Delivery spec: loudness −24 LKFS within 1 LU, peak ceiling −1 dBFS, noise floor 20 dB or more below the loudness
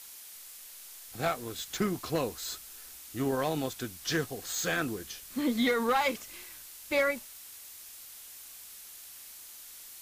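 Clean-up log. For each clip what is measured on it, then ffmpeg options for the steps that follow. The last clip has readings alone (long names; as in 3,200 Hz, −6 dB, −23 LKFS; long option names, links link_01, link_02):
background noise floor −49 dBFS; target noise floor −52 dBFS; integrated loudness −31.5 LKFS; sample peak −19.0 dBFS; target loudness −24.0 LKFS
→ -af "afftdn=noise_reduction=6:noise_floor=-49"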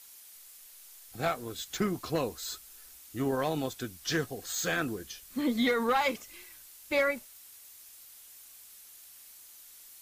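background noise floor −53 dBFS; integrated loudness −32.0 LKFS; sample peak −19.0 dBFS; target loudness −24.0 LKFS
→ -af "volume=8dB"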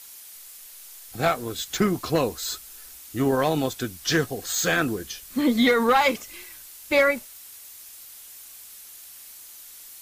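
integrated loudness −24.0 LKFS; sample peak −11.0 dBFS; background noise floor −45 dBFS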